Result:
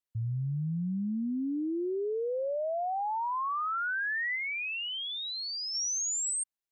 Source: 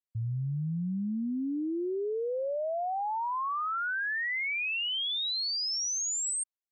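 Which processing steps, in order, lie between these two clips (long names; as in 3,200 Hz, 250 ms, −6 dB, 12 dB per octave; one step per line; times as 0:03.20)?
0:04.35–0:05.75: dynamic equaliser 3,900 Hz, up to −5 dB, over −43 dBFS, Q 0.85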